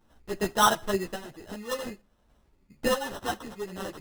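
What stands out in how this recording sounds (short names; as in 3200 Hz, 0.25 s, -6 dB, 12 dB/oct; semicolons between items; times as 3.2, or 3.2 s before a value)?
random-step tremolo; aliases and images of a low sample rate 2300 Hz, jitter 0%; a shimmering, thickened sound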